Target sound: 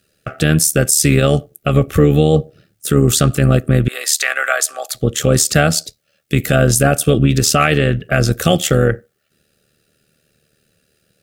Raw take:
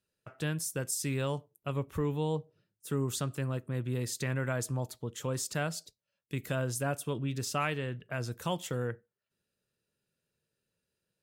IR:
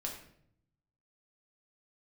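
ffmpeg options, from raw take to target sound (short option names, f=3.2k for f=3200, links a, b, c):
-filter_complex "[0:a]asettb=1/sr,asplit=3[a][b][c];[a]atrim=end=3.884[d];[b]atrim=start=3.88:end=4.95,asetpts=PTS-STARTPTS,afade=t=in:d=0.004:c=qsin,afade=t=out:st=1.066:d=0.004:c=qsin,highpass=f=750:w=0.5412,highpass=f=750:w=1.3066[e];[c]atrim=start=4.946[f];[d][e]acrossfade=d=0.004:c1=hsin:c2=qsin[g];[g][f]acrossfade=d=0.004:c1=qsin:c2=hsin,tremolo=f=75:d=0.667,asuperstop=centerf=960:order=12:qfactor=3.4,alimiter=level_in=26.5dB:limit=-1dB:release=50:level=0:latency=1,volume=-1dB"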